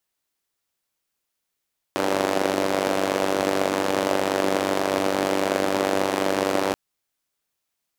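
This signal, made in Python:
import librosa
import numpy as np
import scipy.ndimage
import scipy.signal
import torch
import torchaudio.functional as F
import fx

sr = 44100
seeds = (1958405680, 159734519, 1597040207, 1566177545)

y = fx.engine_four(sr, seeds[0], length_s=4.78, rpm=2900, resonances_hz=(340.0, 530.0))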